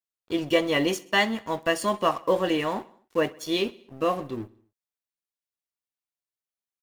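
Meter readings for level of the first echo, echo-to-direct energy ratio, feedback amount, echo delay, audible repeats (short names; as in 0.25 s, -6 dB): -22.0 dB, -20.0 dB, 59%, 64 ms, 3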